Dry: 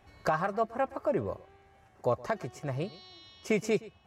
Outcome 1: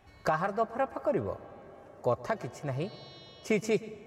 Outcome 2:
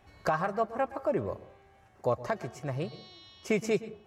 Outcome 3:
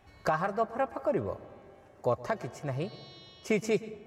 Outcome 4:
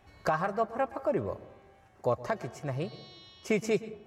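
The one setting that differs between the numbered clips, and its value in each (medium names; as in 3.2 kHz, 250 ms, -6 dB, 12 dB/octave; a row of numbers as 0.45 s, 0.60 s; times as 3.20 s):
plate-style reverb, RT60: 5.2 s, 0.52 s, 2.4 s, 1.1 s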